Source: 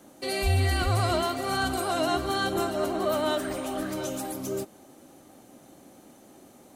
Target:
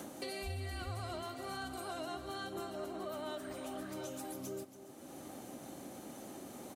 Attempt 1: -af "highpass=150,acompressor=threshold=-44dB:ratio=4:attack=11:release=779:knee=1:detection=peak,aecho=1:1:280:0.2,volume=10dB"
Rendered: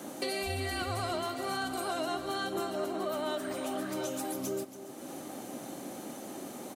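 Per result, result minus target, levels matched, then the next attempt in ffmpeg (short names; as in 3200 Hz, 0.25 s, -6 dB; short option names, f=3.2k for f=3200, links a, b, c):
compressor: peak gain reduction -9 dB; 125 Hz band -5.0 dB
-af "highpass=150,acompressor=threshold=-55dB:ratio=4:attack=11:release=779:knee=1:detection=peak,aecho=1:1:280:0.2,volume=10dB"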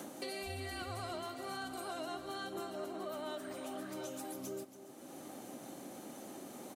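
125 Hz band -5.0 dB
-af "highpass=51,acompressor=threshold=-55dB:ratio=4:attack=11:release=779:knee=1:detection=peak,aecho=1:1:280:0.2,volume=10dB"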